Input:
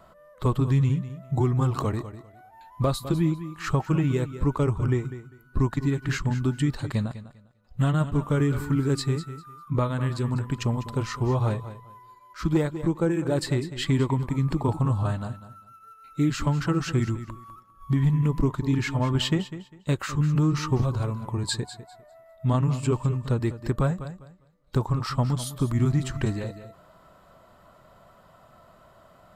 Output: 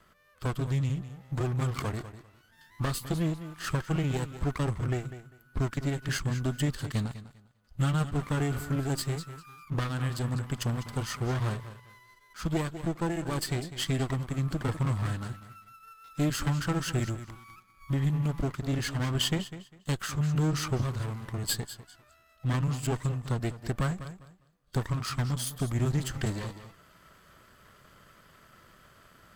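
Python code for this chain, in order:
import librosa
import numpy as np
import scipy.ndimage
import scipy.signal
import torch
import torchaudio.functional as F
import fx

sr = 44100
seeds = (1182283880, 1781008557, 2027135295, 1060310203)

y = fx.lower_of_two(x, sr, delay_ms=0.63)
y = fx.high_shelf(y, sr, hz=2300.0, db=8.0)
y = fx.rider(y, sr, range_db=10, speed_s=2.0)
y = F.gain(torch.from_numpy(y), -5.5).numpy()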